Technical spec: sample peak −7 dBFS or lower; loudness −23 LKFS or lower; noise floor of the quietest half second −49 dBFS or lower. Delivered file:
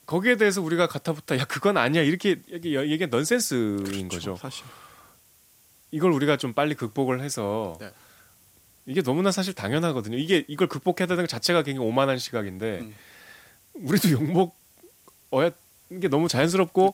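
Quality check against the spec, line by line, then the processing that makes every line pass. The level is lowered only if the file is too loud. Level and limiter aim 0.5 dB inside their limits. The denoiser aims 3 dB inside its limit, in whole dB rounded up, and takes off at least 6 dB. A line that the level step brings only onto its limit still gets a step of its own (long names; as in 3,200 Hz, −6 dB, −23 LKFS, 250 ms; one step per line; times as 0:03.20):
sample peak −4.5 dBFS: out of spec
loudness −24.5 LKFS: in spec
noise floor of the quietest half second −58 dBFS: in spec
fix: brickwall limiter −7.5 dBFS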